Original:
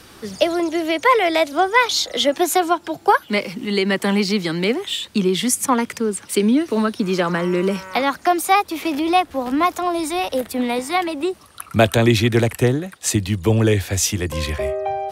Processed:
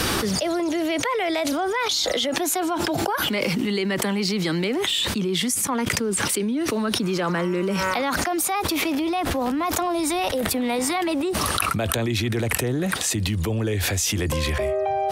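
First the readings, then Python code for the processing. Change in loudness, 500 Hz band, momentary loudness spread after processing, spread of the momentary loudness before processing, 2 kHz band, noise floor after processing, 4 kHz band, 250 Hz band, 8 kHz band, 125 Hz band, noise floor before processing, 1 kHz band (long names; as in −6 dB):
−4.0 dB, −5.0 dB, 2 LU, 7 LU, −3.5 dB, −27 dBFS, −1.0 dB, −4.0 dB, 0.0 dB, −4.5 dB, −46 dBFS, −6.5 dB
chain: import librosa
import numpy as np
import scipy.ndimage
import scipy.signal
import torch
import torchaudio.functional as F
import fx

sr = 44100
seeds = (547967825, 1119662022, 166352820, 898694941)

y = fx.env_flatten(x, sr, amount_pct=100)
y = y * librosa.db_to_amplitude(-13.5)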